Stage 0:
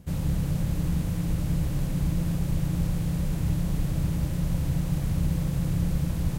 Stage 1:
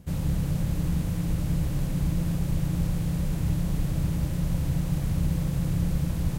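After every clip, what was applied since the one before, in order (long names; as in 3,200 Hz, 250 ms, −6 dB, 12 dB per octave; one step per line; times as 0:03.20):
no processing that can be heard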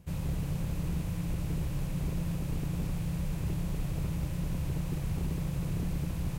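thirty-one-band graphic EQ 250 Hz −6 dB, 1,000 Hz +3 dB, 2,500 Hz +5 dB
wave folding −20 dBFS
level −5.5 dB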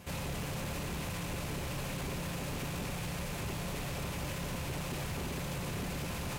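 brickwall limiter −31 dBFS, peak gain reduction 5.5 dB
notch comb filter 160 Hz
mid-hump overdrive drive 23 dB, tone 7,100 Hz, clips at −28 dBFS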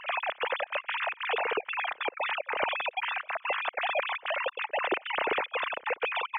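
three sine waves on the formant tracks
gate pattern "xxxx.xxx.x.xxx.x" 187 BPM −24 dB
level +7 dB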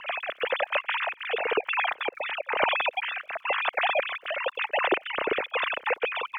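rotating-speaker cabinet horn 1 Hz
surface crackle 98 per second −60 dBFS
level +6 dB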